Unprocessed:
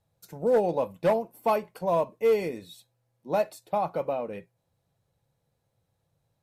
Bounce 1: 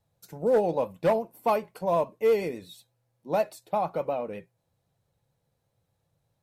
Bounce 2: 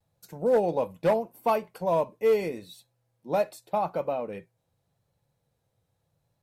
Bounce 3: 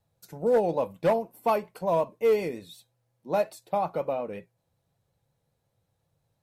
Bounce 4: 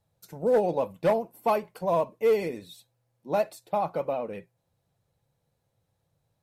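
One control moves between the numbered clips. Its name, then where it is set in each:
vibrato, rate: 8.3 Hz, 0.83 Hz, 5.5 Hz, 15 Hz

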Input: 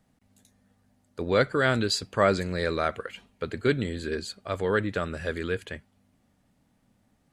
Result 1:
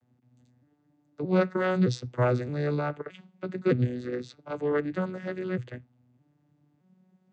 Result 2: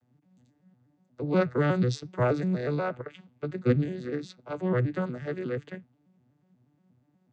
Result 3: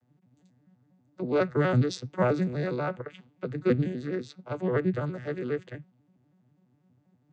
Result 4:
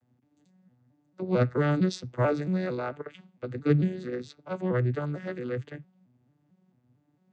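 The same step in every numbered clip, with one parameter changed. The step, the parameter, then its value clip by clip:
vocoder on a broken chord, a note every: 618 ms, 121 ms, 82 ms, 224 ms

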